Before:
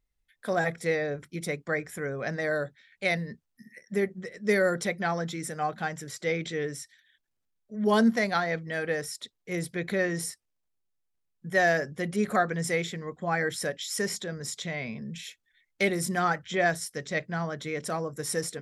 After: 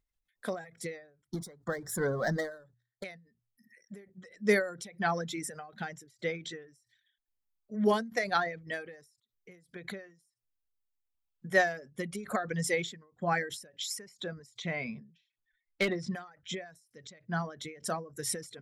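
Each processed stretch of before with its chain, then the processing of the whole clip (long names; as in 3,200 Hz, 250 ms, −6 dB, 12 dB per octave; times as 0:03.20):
0:01.27–0:03.04: noise gate −55 dBFS, range −38 dB + power curve on the samples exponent 0.7 + Butterworth band-reject 2,600 Hz, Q 1.4
0:15.00–0:16.15: low-pass filter 4,800 Hz 24 dB per octave + gain into a clipping stage and back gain 21.5 dB
whole clip: reverb reduction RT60 1.1 s; mains-hum notches 60/120 Hz; every ending faded ahead of time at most 120 dB per second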